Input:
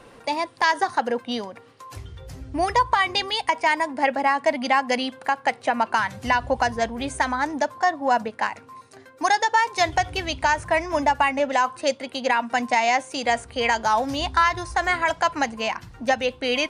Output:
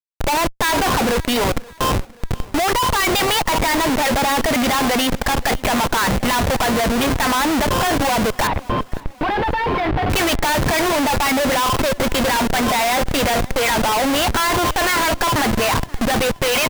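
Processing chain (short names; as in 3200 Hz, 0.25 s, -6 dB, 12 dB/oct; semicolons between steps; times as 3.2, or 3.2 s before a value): bell 2900 Hz +4.5 dB 2.6 oct; overdrive pedal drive 24 dB, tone 1300 Hz, clips at -5 dBFS; Schmitt trigger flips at -23 dBFS; 8.47–10.1 air absorption 380 m; feedback echo 0.529 s, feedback 50%, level -22 dB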